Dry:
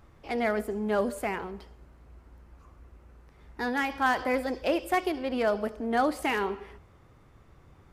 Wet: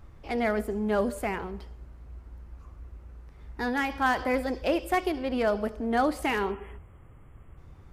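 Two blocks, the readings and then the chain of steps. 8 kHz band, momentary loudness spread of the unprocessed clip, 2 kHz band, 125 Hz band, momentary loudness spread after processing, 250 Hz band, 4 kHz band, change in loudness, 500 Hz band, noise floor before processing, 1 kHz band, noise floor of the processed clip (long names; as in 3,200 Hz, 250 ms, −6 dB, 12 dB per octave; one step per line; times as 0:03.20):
0.0 dB, 8 LU, 0.0 dB, +5.0 dB, 21 LU, +1.5 dB, 0.0 dB, +0.5 dB, +0.5 dB, −57 dBFS, 0.0 dB, −51 dBFS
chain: time-frequency box erased 0:06.52–0:07.57, 3,400–7,000 Hz
low-shelf EQ 110 Hz +10.5 dB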